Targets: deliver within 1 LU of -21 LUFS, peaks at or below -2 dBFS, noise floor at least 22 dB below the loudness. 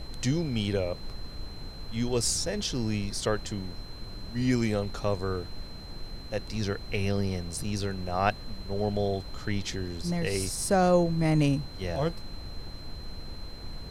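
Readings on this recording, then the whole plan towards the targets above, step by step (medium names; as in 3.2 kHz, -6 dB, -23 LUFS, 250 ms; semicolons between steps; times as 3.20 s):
steady tone 4.1 kHz; tone level -47 dBFS; noise floor -42 dBFS; noise floor target -52 dBFS; loudness -29.5 LUFS; peak level -9.5 dBFS; loudness target -21.0 LUFS
-> band-stop 4.1 kHz, Q 30; noise print and reduce 10 dB; trim +8.5 dB; peak limiter -2 dBFS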